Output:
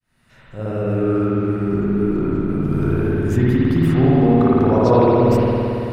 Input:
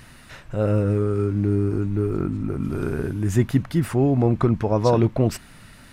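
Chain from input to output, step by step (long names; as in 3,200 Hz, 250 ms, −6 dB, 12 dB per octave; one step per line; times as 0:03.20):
fade in at the beginning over 1.10 s
spring reverb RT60 3.2 s, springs 55 ms, chirp 30 ms, DRR −8 dB
dynamic equaliser 8,900 Hz, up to −6 dB, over −49 dBFS, Q 1
level −2 dB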